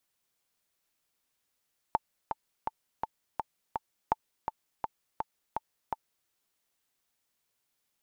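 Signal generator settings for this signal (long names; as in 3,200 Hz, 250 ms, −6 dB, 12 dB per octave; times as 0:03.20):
click track 166 BPM, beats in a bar 6, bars 2, 883 Hz, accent 6.5 dB −11.5 dBFS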